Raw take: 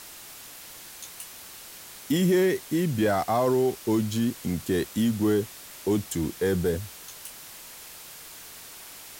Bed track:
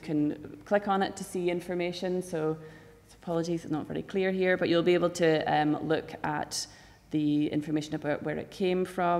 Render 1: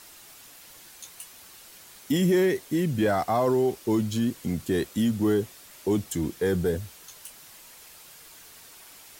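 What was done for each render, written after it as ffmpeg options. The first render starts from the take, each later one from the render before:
-af "afftdn=nr=6:nf=-45"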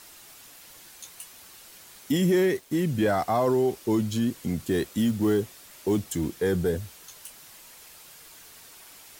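-filter_complex "[0:a]asettb=1/sr,asplit=3[a][b][c];[a]atrim=end=2.154[d];[b]atrim=start=2.15:end=2.83,asetpts=PTS-STARTPTS,afade=t=in:d=0.004:c=qsin,afade=t=out:st=0.676:d=0.004:c=qsin,aeval=exprs='sgn(val(0))*max(abs(val(0))-0.00282,0)':c=same[e];[c]atrim=start=2.826[f];[d][e]acrossfade=d=0.004:c1=hsin:c2=qsin[g];[g][f]acrossfade=d=0.004:c1=qsin:c2=hsin,asettb=1/sr,asplit=3[h][i][j];[h]atrim=end=4.684[k];[i]atrim=start=4.68:end=6.38,asetpts=PTS-STARTPTS,afade=t=in:d=0.004:c=qsin,afade=t=out:st=1.696:d=0.004:c=qsin,acrusher=bits=7:mode=log:mix=0:aa=0.000001[l];[j]atrim=start=6.376[m];[k][l]acrossfade=d=0.004:c1=hsin:c2=qsin[n];[n][m]acrossfade=d=0.004:c1=qsin:c2=hsin"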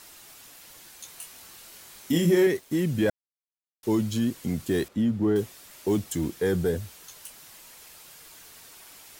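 -filter_complex "[0:a]asettb=1/sr,asplit=3[a][b][c];[a]atrim=end=1.064[d];[b]atrim=start=1.06:end=2.47,asetpts=PTS-STARTPTS,afade=t=in:d=0.004:c=qsin,afade=t=out:st=1.406:d=0.004:c=qsin,asplit=2[e][f];[f]adelay=24,volume=-5dB[g];[e][g]amix=inputs=2:normalize=0,atrim=end_sample=62181[h];[c]atrim=start=2.466[i];[d][h]acrossfade=d=0.004:c1=hsin:c2=qsin[j];[j][i]acrossfade=d=0.004:c1=qsin:c2=hsin,asettb=1/sr,asplit=3[k][l][m];[k]atrim=end=4.884[n];[l]atrim=start=4.88:end=5.36,asetpts=PTS-STARTPTS,afade=t=in:d=0.004:c=qsin,afade=t=out:st=0.476:d=0.004:c=qsin,lowpass=f=1.2k:p=1[o];[m]atrim=start=5.356[p];[n][o]acrossfade=d=0.004:c1=hsin:c2=qsin[q];[q][p]acrossfade=d=0.004:c1=qsin:c2=hsin,asplit=3[r][s][t];[r]atrim=end=3.1,asetpts=PTS-STARTPTS,afade=t=out:st=3.096:d=0.004:c=hsin[u];[s]atrim=start=3.1:end=3.83,asetpts=PTS-STARTPTS,volume=0[v];[t]atrim=start=3.83,asetpts=PTS-STARTPTS,afade=t=in:d=0.004:c=hsin[w];[u][v][w]concat=n=3:v=0:a=1"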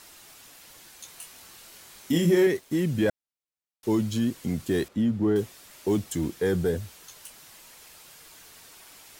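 -af "highshelf=f=11k:g=-4"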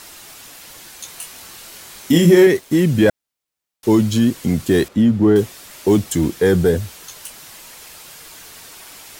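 -af "volume=10.5dB,alimiter=limit=-2dB:level=0:latency=1"

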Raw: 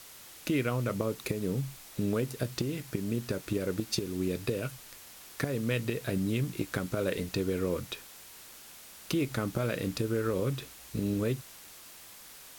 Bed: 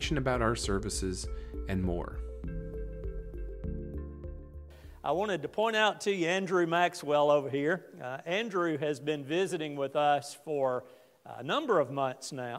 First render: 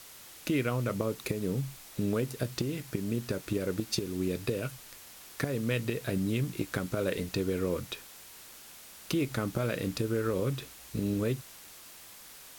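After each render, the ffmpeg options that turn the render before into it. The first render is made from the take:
-af anull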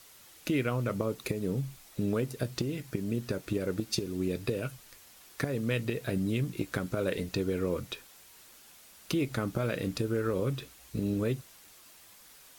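-af "afftdn=nr=6:nf=-51"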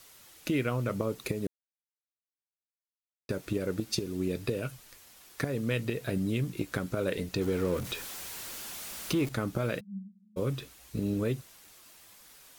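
-filter_complex "[0:a]asettb=1/sr,asplit=3[a][b][c];[a]atrim=end=7.414[d];[b]atrim=start=7.41:end=9.29,asetpts=PTS-STARTPTS,afade=t=in:d=0.004:c=qsin,afade=t=out:st=1.876:d=0.004:c=qsin,aeval=exprs='val(0)+0.5*0.0141*sgn(val(0))':c=same[e];[c]atrim=start=9.286[f];[d][e]acrossfade=d=0.004:c1=hsin:c2=qsin[g];[g][f]acrossfade=d=0.004:c1=qsin:c2=hsin,asplit=3[h][i][j];[h]afade=t=out:st=9.79:d=0.02[k];[i]asuperpass=centerf=200:order=20:qfactor=7.3,afade=t=in:st=9.79:d=0.02,afade=t=out:st=10.36:d=0.02[l];[j]afade=t=in:st=10.36:d=0.02[m];[k][l][m]amix=inputs=3:normalize=0,asplit=3[n][o][p];[n]atrim=end=1.47,asetpts=PTS-STARTPTS,afade=t=out:st=1.466:d=0.004:c=hsin[q];[o]atrim=start=1.47:end=3.29,asetpts=PTS-STARTPTS,volume=0[r];[p]atrim=start=3.29,asetpts=PTS-STARTPTS,afade=t=in:d=0.004:c=hsin[s];[q][r][s]concat=n=3:v=0:a=1"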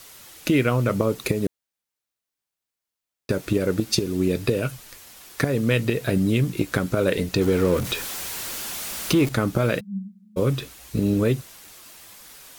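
-af "volume=9.5dB"

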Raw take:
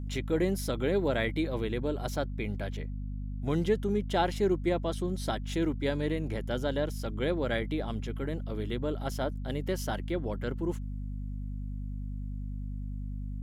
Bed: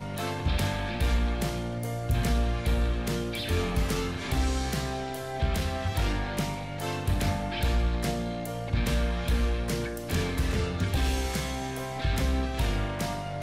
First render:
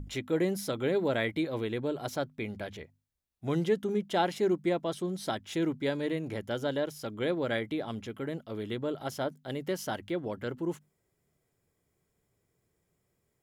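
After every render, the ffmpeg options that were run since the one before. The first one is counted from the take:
-af "bandreject=f=50:t=h:w=6,bandreject=f=100:t=h:w=6,bandreject=f=150:t=h:w=6,bandreject=f=200:t=h:w=6,bandreject=f=250:t=h:w=6"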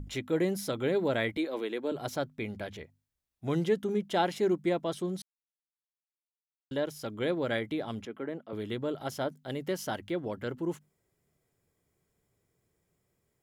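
-filter_complex "[0:a]asettb=1/sr,asplit=3[a][b][c];[a]atrim=end=1.374[d];[b]atrim=start=1.37:end=1.92,asetpts=PTS-STARTPTS,afade=t=in:d=0.004:c=qsin,afade=t=out:st=0.546:d=0.004:c=qsin,highpass=f=260:w=0.5412,highpass=f=260:w=1.3066[e];[c]atrim=start=1.916[f];[d][e]acrossfade=d=0.004:c1=hsin:c2=qsin[g];[g][f]acrossfade=d=0.004:c1=qsin:c2=hsin,asettb=1/sr,asplit=3[h][i][j];[h]atrim=end=8.054[k];[i]atrim=start=8.05:end=8.53,asetpts=PTS-STARTPTS,afade=t=in:d=0.004:c=qsin,afade=t=out:st=0.476:d=0.004:c=qsin,acrossover=split=180 2500:gain=0.0708 1 0.2[l][m][n];[l][m][n]amix=inputs=3:normalize=0[o];[j]atrim=start=8.526[p];[k][o]acrossfade=d=0.004:c1=hsin:c2=qsin[q];[q][p]acrossfade=d=0.004:c1=qsin:c2=hsin,asplit=3[r][s][t];[r]atrim=end=5.22,asetpts=PTS-STARTPTS,afade=t=out:st=5.216:d=0.004:c=hsin[u];[s]atrim=start=5.22:end=6.71,asetpts=PTS-STARTPTS,volume=0[v];[t]atrim=start=6.71,asetpts=PTS-STARTPTS,afade=t=in:d=0.004:c=hsin[w];[u][v][w]concat=n=3:v=0:a=1"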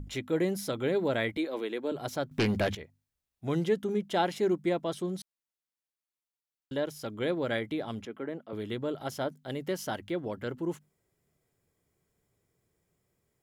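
-filter_complex "[0:a]asettb=1/sr,asplit=3[a][b][c];[a]atrim=end=2.314[d];[b]atrim=start=2.31:end=2.75,asetpts=PTS-STARTPTS,afade=t=in:d=0.004:c=qsin,afade=t=out:st=0.436:d=0.004:c=qsin,aeval=exprs='0.0841*sin(PI/2*2.82*val(0)/0.0841)':c=same[e];[c]atrim=start=2.746[f];[d][e]acrossfade=d=0.004:c1=hsin:c2=qsin[g];[g][f]acrossfade=d=0.004:c1=qsin:c2=hsin"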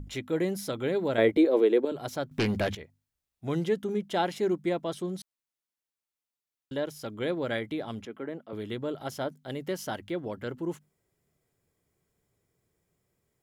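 -filter_complex "[0:a]asettb=1/sr,asplit=3[a][b][c];[a]atrim=end=1.184[d];[b]atrim=start=1.18:end=1.85,asetpts=PTS-STARTPTS,afade=t=in:d=0.004:c=qsin,afade=t=out:st=0.666:d=0.004:c=qsin,equalizer=f=430:t=o:w=1.6:g=14[e];[c]atrim=start=1.846[f];[d][e]acrossfade=d=0.004:c1=hsin:c2=qsin[g];[g][f]acrossfade=d=0.004:c1=qsin:c2=hsin"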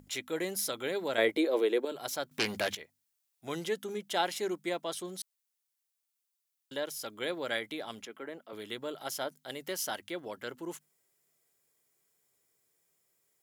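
-af "highpass=f=740:p=1,highshelf=f=4.8k:g=9.5"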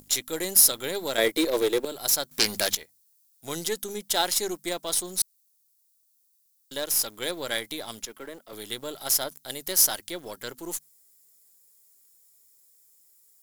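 -filter_complex "[0:a]aexciter=amount=2.8:drive=8.1:freq=3.9k,asplit=2[a][b];[b]acrusher=bits=5:dc=4:mix=0:aa=0.000001,volume=-6dB[c];[a][c]amix=inputs=2:normalize=0"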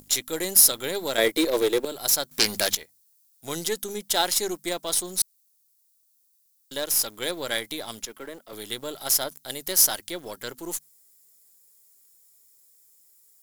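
-af "volume=1.5dB"

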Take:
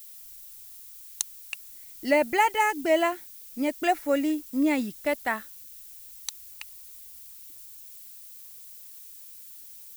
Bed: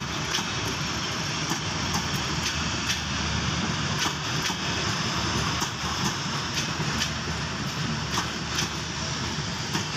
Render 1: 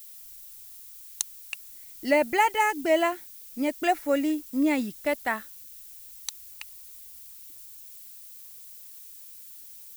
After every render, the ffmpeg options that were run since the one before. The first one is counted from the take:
-af anull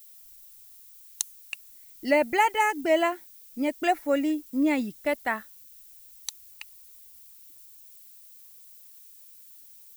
-af "afftdn=nr=6:nf=-46"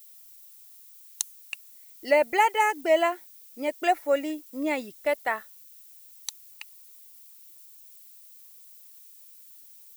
-af "lowshelf=f=330:t=q:w=1.5:g=-8.5,bandreject=f=1.6k:w=22"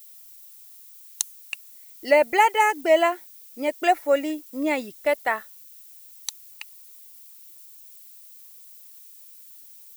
-af "volume=3.5dB"

